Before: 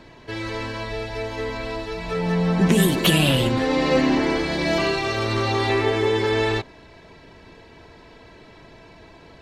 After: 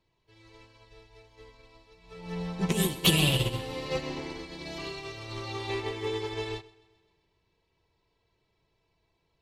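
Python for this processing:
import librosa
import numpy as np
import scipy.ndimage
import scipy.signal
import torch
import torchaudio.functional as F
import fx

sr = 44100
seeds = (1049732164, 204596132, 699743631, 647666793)

y = fx.graphic_eq_15(x, sr, hz=(250, 630, 1600), db=(-12, -7, -10))
y = fx.echo_feedback(y, sr, ms=130, feedback_pct=60, wet_db=-9.5)
y = fx.upward_expand(y, sr, threshold_db=-34.0, expansion=2.5)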